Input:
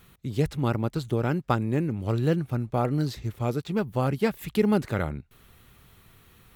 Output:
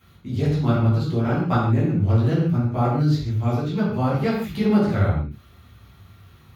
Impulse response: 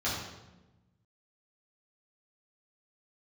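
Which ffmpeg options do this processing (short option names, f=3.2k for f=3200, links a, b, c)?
-filter_complex "[1:a]atrim=start_sample=2205,afade=t=out:st=0.22:d=0.01,atrim=end_sample=10143,asetrate=42777,aresample=44100[a];[0:a][a]afir=irnorm=-1:irlink=0,volume=-5.5dB"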